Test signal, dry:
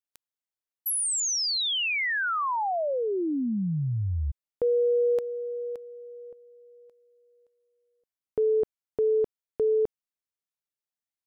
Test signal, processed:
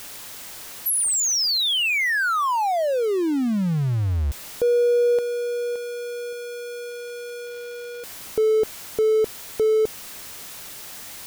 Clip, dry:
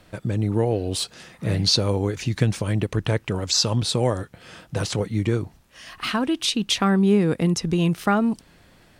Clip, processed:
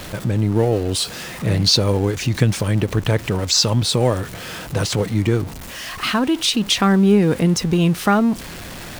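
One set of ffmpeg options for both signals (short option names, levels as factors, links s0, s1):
-af "aeval=exprs='val(0)+0.5*0.0251*sgn(val(0))':c=same,volume=1.5"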